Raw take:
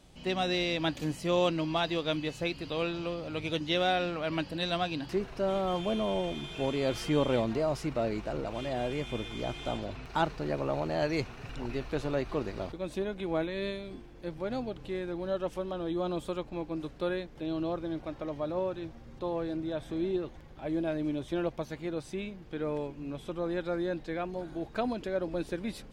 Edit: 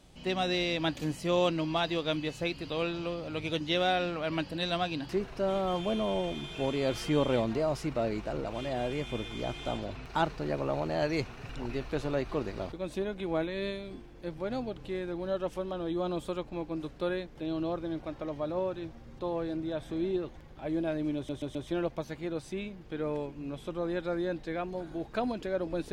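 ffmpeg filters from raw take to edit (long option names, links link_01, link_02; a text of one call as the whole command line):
ffmpeg -i in.wav -filter_complex "[0:a]asplit=4[link_01][link_02][link_03][link_04];[link_01]atrim=end=21.292[link_05];[link_02]atrim=start=21.158:end=21.292[link_06];[link_03]atrim=start=21.158:end=21.292[link_07];[link_04]atrim=start=21.158[link_08];[link_05][link_06]acrossfade=duration=0.004:curve1=hsin:curve2=hsin[link_09];[link_09][link_07]acrossfade=duration=0.004:curve1=hsin:curve2=hsin[link_10];[link_10][link_08]acrossfade=duration=0.004:curve1=hsin:curve2=hsin" out.wav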